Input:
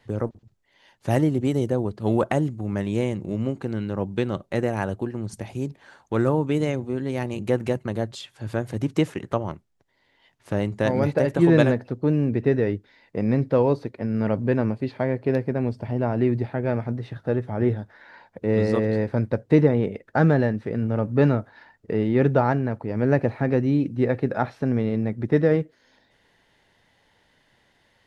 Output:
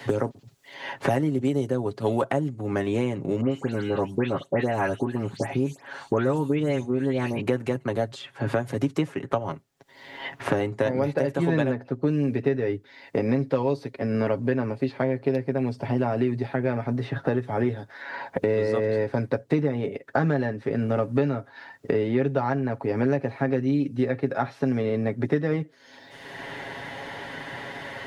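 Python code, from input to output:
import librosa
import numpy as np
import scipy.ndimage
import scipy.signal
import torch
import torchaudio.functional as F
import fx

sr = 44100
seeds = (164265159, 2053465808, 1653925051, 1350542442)

y = fx.dispersion(x, sr, late='highs', ms=119.0, hz=2900.0, at=(3.41, 7.41))
y = fx.highpass(y, sr, hz=200.0, slope=6)
y = y + 0.58 * np.pad(y, (int(7.3 * sr / 1000.0), 0))[:len(y)]
y = fx.band_squash(y, sr, depth_pct=100)
y = y * 10.0 ** (-2.5 / 20.0)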